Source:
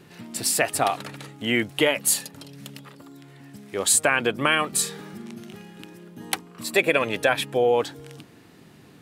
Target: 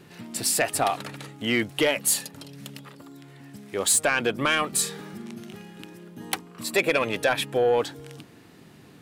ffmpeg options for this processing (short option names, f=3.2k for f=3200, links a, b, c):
-af "asoftclip=type=tanh:threshold=-12.5dB"